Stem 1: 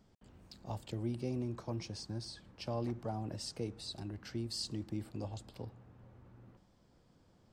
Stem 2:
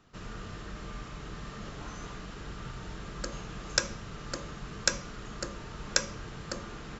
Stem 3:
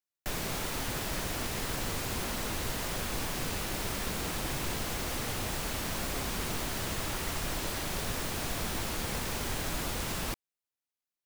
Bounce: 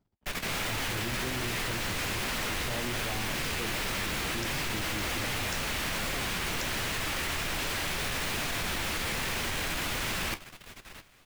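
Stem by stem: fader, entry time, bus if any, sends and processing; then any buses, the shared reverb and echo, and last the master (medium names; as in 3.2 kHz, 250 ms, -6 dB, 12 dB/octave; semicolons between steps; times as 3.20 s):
+1.0 dB, 0.00 s, no bus, no send, no echo send, treble shelf 3.7 kHz -10 dB
-15.5 dB, 0.65 s, bus A, no send, no echo send, none
0.0 dB, 0.00 s, bus A, no send, echo send -19 dB, peaking EQ 2.3 kHz +8.5 dB 1.8 oct; auto duck -7 dB, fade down 0.55 s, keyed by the first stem
bus A: 0.0 dB, level rider gain up to 6 dB; peak limiter -19.5 dBFS, peak gain reduction 7.5 dB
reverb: none
echo: feedback delay 674 ms, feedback 57%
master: waveshaping leveller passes 2; level held to a coarse grid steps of 14 dB; flange 1.3 Hz, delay 6.5 ms, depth 9.4 ms, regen -51%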